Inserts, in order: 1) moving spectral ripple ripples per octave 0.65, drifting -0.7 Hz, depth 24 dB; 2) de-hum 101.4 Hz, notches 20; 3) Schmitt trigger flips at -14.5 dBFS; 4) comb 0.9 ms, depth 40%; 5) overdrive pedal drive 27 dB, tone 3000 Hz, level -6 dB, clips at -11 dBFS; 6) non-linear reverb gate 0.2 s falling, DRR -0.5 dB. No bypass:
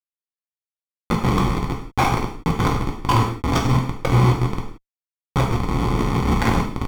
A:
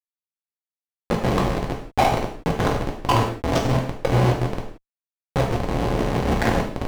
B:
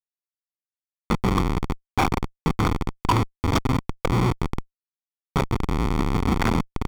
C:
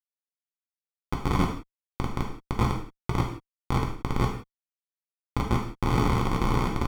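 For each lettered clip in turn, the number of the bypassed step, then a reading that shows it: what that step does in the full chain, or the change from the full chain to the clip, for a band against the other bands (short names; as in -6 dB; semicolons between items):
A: 4, 500 Hz band +5.0 dB; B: 6, crest factor change -3.0 dB; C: 1, crest factor change +2.5 dB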